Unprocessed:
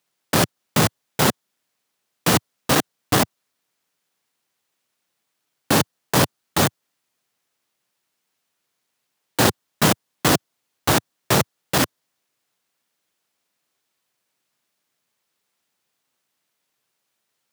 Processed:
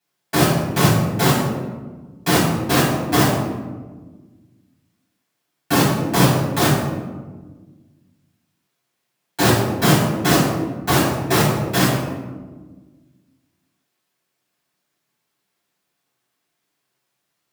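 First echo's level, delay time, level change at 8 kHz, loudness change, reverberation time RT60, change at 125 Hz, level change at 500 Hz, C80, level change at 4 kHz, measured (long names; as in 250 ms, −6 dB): no echo audible, no echo audible, 0.0 dB, +2.5 dB, 1.4 s, +7.0 dB, +3.5 dB, 4.0 dB, +1.0 dB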